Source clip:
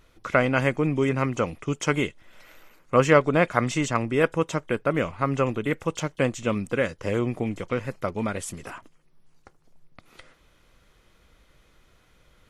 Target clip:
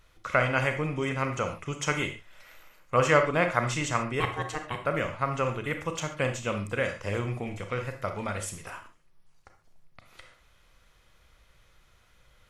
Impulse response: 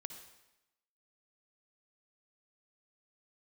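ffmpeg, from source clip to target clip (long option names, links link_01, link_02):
-filter_complex "[0:a]equalizer=frequency=290:width=0.97:gain=-9.5,asettb=1/sr,asplit=3[link_01][link_02][link_03];[link_01]atrim=end=4.204[link_04];[link_02]atrim=start=4.2:end=4.82,asetpts=PTS-STARTPTS,afade=type=in:duration=0.004:curve=qsin,afade=type=out:start_time=0.616:duration=0.004:curve=qsin,aeval=exprs='val(0)*sin(2*PI*610*n/s)':channel_layout=same[link_05];[link_03]atrim=start=4.816[link_06];[link_04][link_05]acrossfade=duration=0.004:curve1=hsin:curve2=qsin[link_07];[link_07][link_06]acrossfade=duration=0.004:curve1=qsin:curve2=hsin[link_08];[1:a]atrim=start_sample=2205,afade=type=out:start_time=0.32:duration=0.01,atrim=end_sample=14553,asetrate=79380,aresample=44100[link_09];[link_08][link_09]afir=irnorm=-1:irlink=0,volume=8dB"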